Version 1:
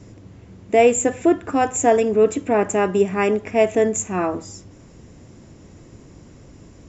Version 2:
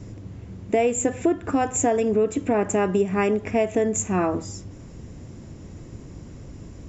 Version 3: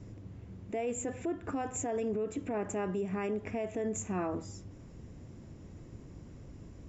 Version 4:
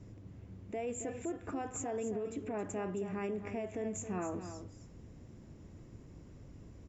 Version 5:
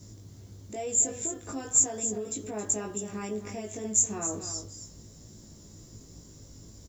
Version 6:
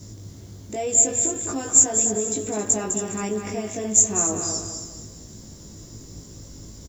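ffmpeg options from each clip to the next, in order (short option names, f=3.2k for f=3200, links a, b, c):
-af "lowshelf=f=210:g=7,acompressor=threshold=-18dB:ratio=4"
-af "highshelf=f=5.4k:g=-6,alimiter=limit=-17.5dB:level=0:latency=1:release=18,volume=-9dB"
-af "aecho=1:1:270:0.316,volume=-4dB"
-filter_complex "[0:a]asplit=2[a][b];[b]adelay=19,volume=-2dB[c];[a][c]amix=inputs=2:normalize=0,aexciter=amount=6.3:drive=7:freq=3.7k"
-af "aecho=1:1:204|408|612|816:0.422|0.143|0.0487|0.0166,volume=7.5dB"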